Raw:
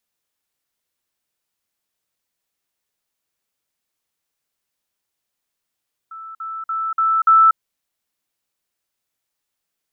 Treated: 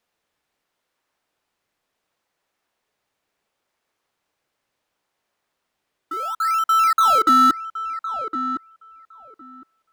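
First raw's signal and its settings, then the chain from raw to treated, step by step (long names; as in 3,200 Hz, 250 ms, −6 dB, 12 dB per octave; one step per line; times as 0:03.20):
level staircase 1,320 Hz −32 dBFS, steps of 6 dB, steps 5, 0.24 s 0.05 s
mid-hump overdrive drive 18 dB, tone 1,300 Hz, clips at −7.5 dBFS
in parallel at −9.5 dB: sample-and-hold swept by an LFO 19×, swing 100% 0.71 Hz
on the sum: feedback echo with a low-pass in the loop 1,061 ms, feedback 17%, low-pass 1,200 Hz, level −8 dB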